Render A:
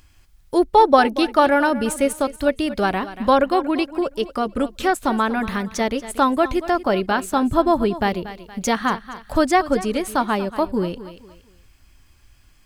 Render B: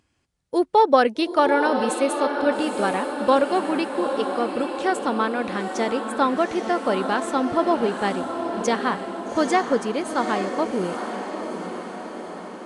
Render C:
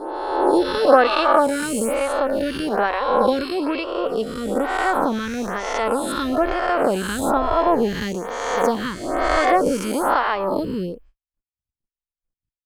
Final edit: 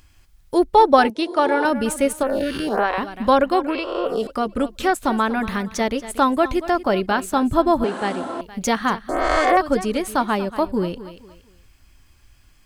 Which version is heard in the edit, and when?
A
1.10–1.65 s: from B
2.23–2.98 s: from C
3.68–4.27 s: from C
7.84–8.41 s: from B
9.09–9.57 s: from C

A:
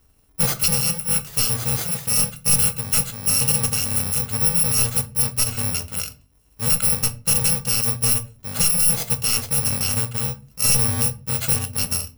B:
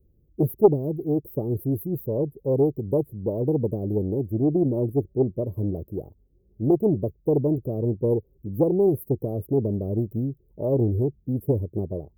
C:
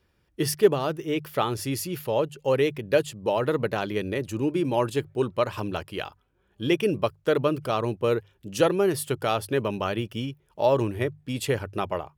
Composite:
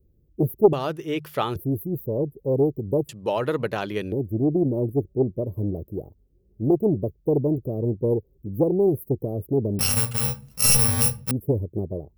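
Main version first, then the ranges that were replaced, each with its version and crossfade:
B
0.73–1.56 s: from C
3.09–4.12 s: from C
9.79–11.31 s: from A

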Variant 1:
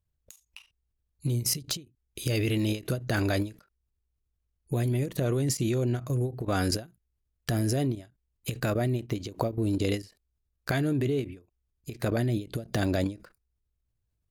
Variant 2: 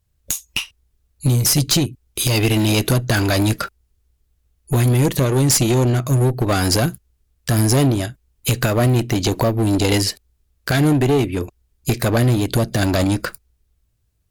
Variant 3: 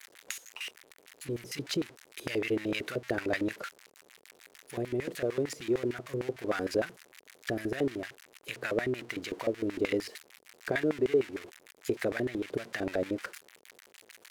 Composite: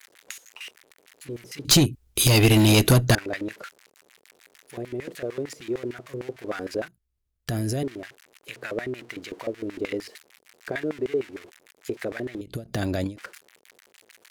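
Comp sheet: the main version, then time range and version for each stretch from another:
3
1.65–3.15 s: from 2
6.88–7.83 s: from 1
12.41–13.17 s: from 1

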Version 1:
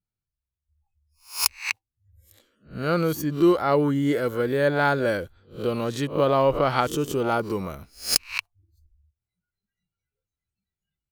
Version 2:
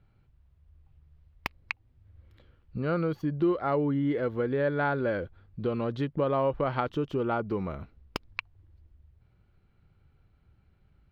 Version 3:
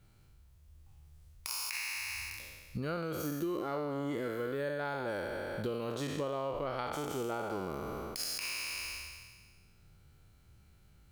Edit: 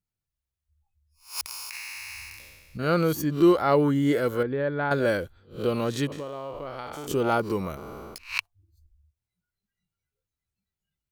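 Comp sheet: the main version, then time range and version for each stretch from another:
1
1.41–2.79 s: from 3
4.43–4.91 s: from 2
6.12–7.07 s: from 3
7.77–8.18 s: from 3

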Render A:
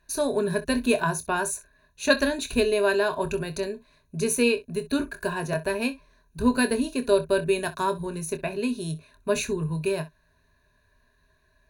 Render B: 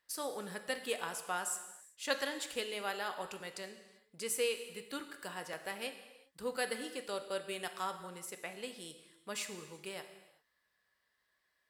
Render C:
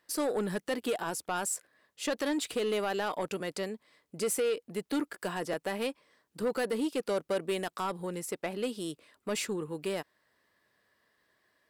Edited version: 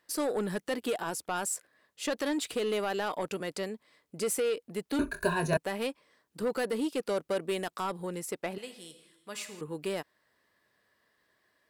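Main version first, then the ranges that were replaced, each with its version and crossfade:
C
4.99–5.57 s: from A
8.58–9.61 s: from B

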